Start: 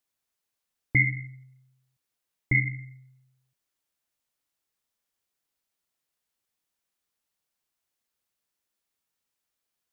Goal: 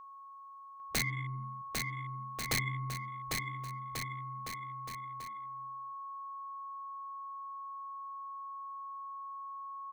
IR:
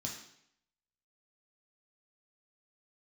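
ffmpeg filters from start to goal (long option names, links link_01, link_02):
-filter_complex "[0:a]afwtdn=0.00794,bandreject=frequency=50:width_type=h:width=6,bandreject=frequency=100:width_type=h:width=6,bandreject=frequency=150:width_type=h:width=6,bandreject=frequency=200:width_type=h:width=6,bandreject=frequency=250:width_type=h:width=6,bandreject=frequency=300:width_type=h:width=6,acompressor=threshold=-37dB:ratio=8,aeval=exprs='val(0)+0.00158*sin(2*PI*1100*n/s)':channel_layout=same,aeval=exprs='(mod(42.2*val(0)+1,2)-1)/42.2':channel_layout=same,asplit=2[link_01][link_02];[link_02]aecho=0:1:800|1440|1952|2362|2689:0.631|0.398|0.251|0.158|0.1[link_03];[link_01][link_03]amix=inputs=2:normalize=0,volume=8dB"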